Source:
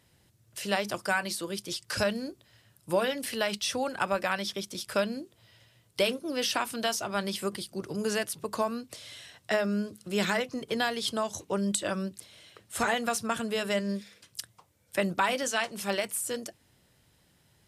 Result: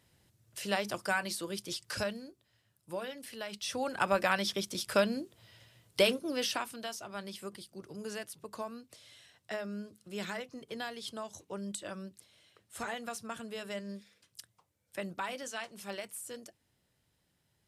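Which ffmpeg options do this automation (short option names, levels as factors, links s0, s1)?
-af "volume=2.82,afade=t=out:st=1.8:d=0.46:silence=0.375837,afade=t=in:st=3.49:d=0.68:silence=0.237137,afade=t=out:st=6.05:d=0.75:silence=0.266073"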